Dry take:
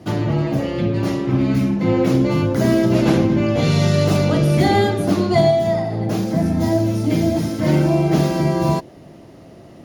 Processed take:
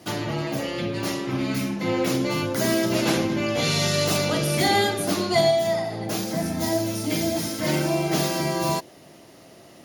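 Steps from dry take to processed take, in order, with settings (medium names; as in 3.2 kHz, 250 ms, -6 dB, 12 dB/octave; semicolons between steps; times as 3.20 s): tilt EQ +3 dB/octave; trim -2.5 dB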